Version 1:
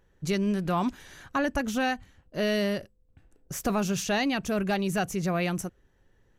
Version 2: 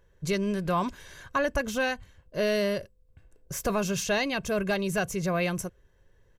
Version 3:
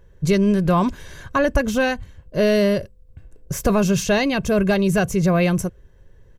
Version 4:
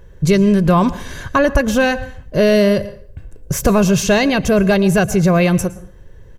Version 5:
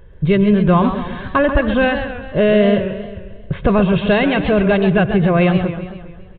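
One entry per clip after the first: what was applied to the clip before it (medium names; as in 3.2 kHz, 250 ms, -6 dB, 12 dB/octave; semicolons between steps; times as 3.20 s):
comb 1.9 ms, depth 48%
bass shelf 440 Hz +8.5 dB; trim +5 dB
in parallel at +0.5 dB: compression, threshold -27 dBFS, peak gain reduction 13.5 dB; on the sum: plate-style reverb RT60 0.53 s, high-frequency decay 0.75×, pre-delay 100 ms, DRR 16.5 dB; trim +2.5 dB
delay 79 ms -23 dB; resampled via 8 kHz; modulated delay 133 ms, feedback 55%, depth 149 cents, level -9.5 dB; trim -1 dB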